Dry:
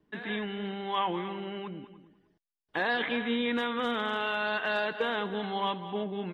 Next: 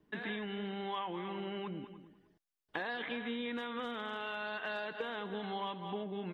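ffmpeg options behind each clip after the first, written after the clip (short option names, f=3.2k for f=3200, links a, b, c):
-af "acompressor=threshold=-36dB:ratio=6"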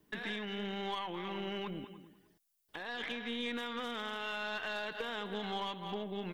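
-af "crystalizer=i=3:c=0,alimiter=level_in=3.5dB:limit=-24dB:level=0:latency=1:release=416,volume=-3.5dB,aeval=exprs='0.0422*(cos(1*acos(clip(val(0)/0.0422,-1,1)))-cos(1*PI/2))+0.00299*(cos(4*acos(clip(val(0)/0.0422,-1,1)))-cos(4*PI/2))':c=same"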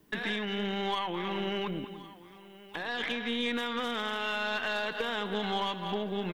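-af "aecho=1:1:1077:0.112,volume=6.5dB"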